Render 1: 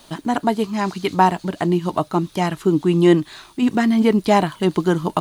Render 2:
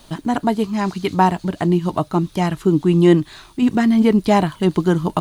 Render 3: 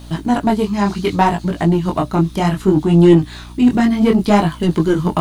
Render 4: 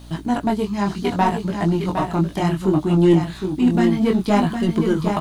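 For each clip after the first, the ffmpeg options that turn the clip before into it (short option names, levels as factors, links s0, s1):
-af "lowshelf=f=140:g=11,volume=0.891"
-af "acontrast=87,flanger=delay=17.5:depth=7.4:speed=0.65,aeval=exprs='val(0)+0.02*(sin(2*PI*60*n/s)+sin(2*PI*2*60*n/s)/2+sin(2*PI*3*60*n/s)/3+sin(2*PI*4*60*n/s)/4+sin(2*PI*5*60*n/s)/5)':c=same"
-af "aecho=1:1:761:0.473,volume=0.562"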